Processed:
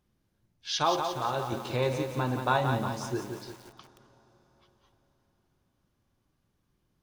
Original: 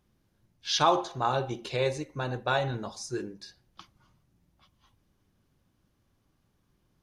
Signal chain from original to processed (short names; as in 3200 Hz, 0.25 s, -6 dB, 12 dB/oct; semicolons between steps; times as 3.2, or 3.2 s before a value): 1.52–3.2 fifteen-band EQ 100 Hz +10 dB, 250 Hz +10 dB, 1000 Hz +10 dB; reverb RT60 4.6 s, pre-delay 25 ms, DRR 19 dB; lo-fi delay 0.176 s, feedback 55%, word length 7-bit, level -6 dB; gain -3.5 dB